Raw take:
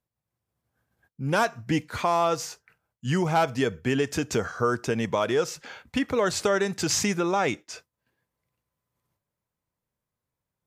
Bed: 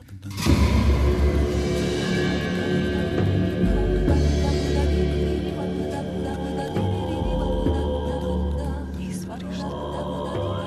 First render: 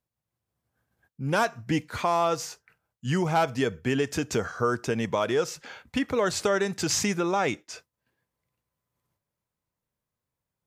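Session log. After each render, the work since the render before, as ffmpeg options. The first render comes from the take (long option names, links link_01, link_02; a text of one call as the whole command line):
ffmpeg -i in.wav -af "volume=-1dB" out.wav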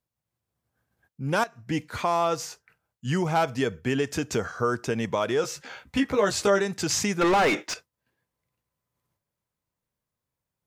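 ffmpeg -i in.wav -filter_complex "[0:a]asettb=1/sr,asplit=3[link_01][link_02][link_03];[link_01]atrim=end=5.424[link_04];[link_02]atrim=start=5.42:end=6.61,asetpts=PTS-STARTPTS,afade=type=in:duration=0.004:curve=qsin,afade=type=out:start_time=1.186:duration=0.004:curve=qsin,asplit=2[link_05][link_06];[link_06]adelay=15,volume=-3dB[link_07];[link_05][link_07]amix=inputs=2:normalize=0,atrim=end_sample=52479[link_08];[link_03]atrim=start=6.606[link_09];[link_04][link_08]acrossfade=duration=0.004:curve1=hsin:curve2=qsin[link_10];[link_10][link_09]acrossfade=duration=0.004:curve1=qsin:curve2=hsin,asettb=1/sr,asplit=3[link_11][link_12][link_13];[link_11]atrim=end=7.214[link_14];[link_12]atrim=start=7.21:end=7.74,asetpts=PTS-STARTPTS,afade=type=in:duration=0.004:curve=qsin,afade=type=out:start_time=0.526:duration=0.004:curve=qsin,asplit=2[link_15][link_16];[link_16]highpass=frequency=720:poles=1,volume=30dB,asoftclip=type=tanh:threshold=-13.5dB[link_17];[link_15][link_17]amix=inputs=2:normalize=0,lowpass=frequency=2000:poles=1,volume=-6dB[link_18];[link_13]atrim=start=7.736[link_19];[link_14][link_18]acrossfade=duration=0.004:curve1=hsin:curve2=qsin[link_20];[link_20][link_19]acrossfade=duration=0.004:curve1=qsin:curve2=hsin,asplit=2[link_21][link_22];[link_21]atrim=end=1.44,asetpts=PTS-STARTPTS,afade=type=out:start_time=1.436:duration=0.004:curve=hsin:silence=0.188365[link_23];[link_22]atrim=start=1.44,asetpts=PTS-STARTPTS,afade=type=in:duration=0.4:silence=0.188365[link_24];[link_23][link_24]concat=n=2:v=0:a=1" out.wav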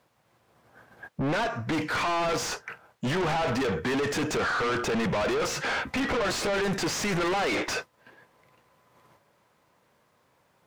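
ffmpeg -i in.wav -filter_complex "[0:a]asplit=2[link_01][link_02];[link_02]highpass=frequency=720:poles=1,volume=36dB,asoftclip=type=tanh:threshold=-10.5dB[link_03];[link_01][link_03]amix=inputs=2:normalize=0,lowpass=frequency=1100:poles=1,volume=-6dB,asoftclip=type=tanh:threshold=-25dB" out.wav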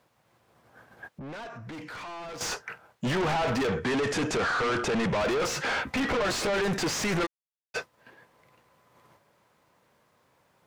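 ffmpeg -i in.wav -filter_complex "[0:a]asettb=1/sr,asplit=3[link_01][link_02][link_03];[link_01]atrim=end=1.054[link_04];[link_02]atrim=start=1.05:end=2.41,asetpts=PTS-STARTPTS,afade=type=in:duration=0.004:curve=qsin,afade=type=out:start_time=1.356:duration=0.004:curve=qsin,acompressor=threshold=-39dB:ratio=16:attack=3.2:release=140:knee=1:detection=peak[link_05];[link_03]atrim=start=2.406[link_06];[link_04][link_05]acrossfade=duration=0.004:curve1=hsin:curve2=qsin[link_07];[link_07][link_06]acrossfade=duration=0.004:curve1=qsin:curve2=hsin,asettb=1/sr,asplit=3[link_08][link_09][link_10];[link_08]atrim=end=3.684[link_11];[link_09]atrim=start=3.68:end=5.19,asetpts=PTS-STARTPTS,afade=type=in:duration=0.004:curve=qsin,afade=type=out:start_time=1.506:duration=0.004:curve=qsin,lowpass=frequency=11000:width=0.5412,lowpass=frequency=11000:width=1.3066[link_12];[link_10]atrim=start=5.186[link_13];[link_11][link_12]acrossfade=duration=0.004:curve1=hsin:curve2=qsin[link_14];[link_14][link_13]acrossfade=duration=0.004:curve1=qsin:curve2=hsin,asplit=3[link_15][link_16][link_17];[link_15]afade=type=out:start_time=7.25:duration=0.02[link_18];[link_16]acrusher=bits=2:mix=0:aa=0.5,afade=type=in:start_time=7.25:duration=0.02,afade=type=out:start_time=7.74:duration=0.02[link_19];[link_17]afade=type=in:start_time=7.74:duration=0.02[link_20];[link_18][link_19][link_20]amix=inputs=3:normalize=0" out.wav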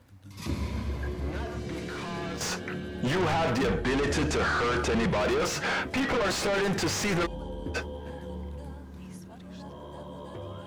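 ffmpeg -i in.wav -i bed.wav -filter_complex "[1:a]volume=-13.5dB[link_01];[0:a][link_01]amix=inputs=2:normalize=0" out.wav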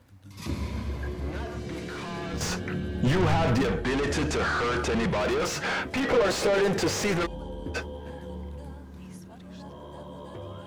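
ffmpeg -i in.wav -filter_complex "[0:a]asettb=1/sr,asplit=3[link_01][link_02][link_03];[link_01]atrim=end=2.334[link_04];[link_02]atrim=start=2.33:end=3.63,asetpts=PTS-STARTPTS,afade=type=in:duration=0.004:curve=qsin,afade=type=out:start_time=1.296:duration=0.004:curve=qsin,lowshelf=frequency=170:gain=11[link_05];[link_03]atrim=start=3.626[link_06];[link_04][link_05]acrossfade=duration=0.004:curve1=hsin:curve2=qsin[link_07];[link_07][link_06]acrossfade=duration=0.004:curve1=qsin:curve2=hsin,asettb=1/sr,asplit=3[link_08][link_09][link_10];[link_08]atrim=end=6.034[link_11];[link_09]atrim=start=6.03:end=7.12,asetpts=PTS-STARTPTS,afade=type=in:duration=0.004:curve=qsin,afade=type=out:start_time=1.086:duration=0.004:curve=qsin,equalizer=frequency=480:width_type=o:width=0.77:gain=7.5[link_12];[link_10]atrim=start=7.116[link_13];[link_11][link_12]acrossfade=duration=0.004:curve1=hsin:curve2=qsin[link_14];[link_14][link_13]acrossfade=duration=0.004:curve1=qsin:curve2=hsin" out.wav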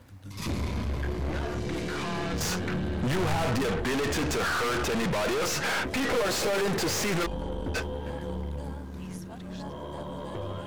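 ffmpeg -i in.wav -af "asoftclip=type=tanh:threshold=-22dB,aeval=exprs='0.0794*(cos(1*acos(clip(val(0)/0.0794,-1,1)))-cos(1*PI/2))+0.0126*(cos(5*acos(clip(val(0)/0.0794,-1,1)))-cos(5*PI/2))+0.00794*(cos(8*acos(clip(val(0)/0.0794,-1,1)))-cos(8*PI/2))':channel_layout=same" out.wav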